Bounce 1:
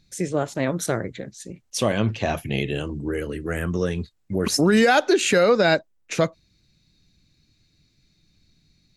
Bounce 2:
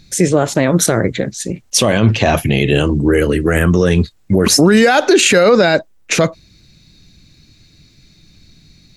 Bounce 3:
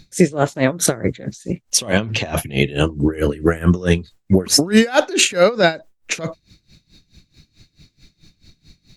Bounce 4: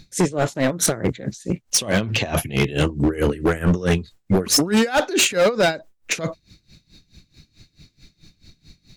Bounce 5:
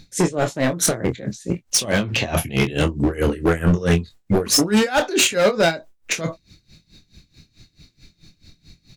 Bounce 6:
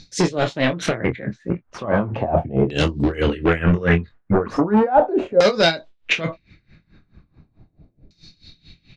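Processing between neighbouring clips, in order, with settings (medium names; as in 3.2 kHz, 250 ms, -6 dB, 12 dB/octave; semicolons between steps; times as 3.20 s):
loudness maximiser +16.5 dB; trim -1 dB
logarithmic tremolo 4.6 Hz, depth 21 dB; trim +1 dB
overload inside the chain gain 12 dB
doubling 24 ms -8 dB
LFO low-pass saw down 0.37 Hz 550–5600 Hz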